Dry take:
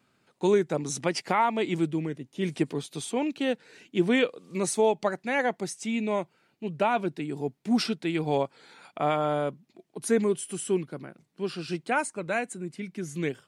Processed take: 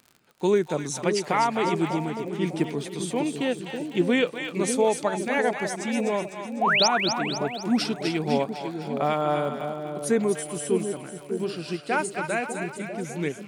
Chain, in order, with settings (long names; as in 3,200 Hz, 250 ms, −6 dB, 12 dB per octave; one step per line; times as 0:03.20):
sound drawn into the spectrogram rise, 0:06.61–0:06.88, 620–6,600 Hz −22 dBFS
echo with a time of its own for lows and highs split 670 Hz, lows 599 ms, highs 251 ms, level −6 dB
surface crackle 54 per second −39 dBFS
level +1 dB